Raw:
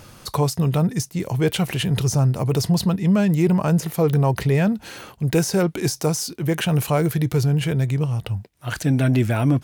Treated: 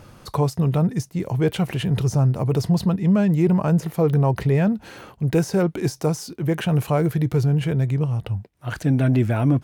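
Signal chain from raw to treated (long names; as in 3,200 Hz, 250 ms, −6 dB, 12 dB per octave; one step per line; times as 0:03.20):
high-shelf EQ 2,400 Hz −9.5 dB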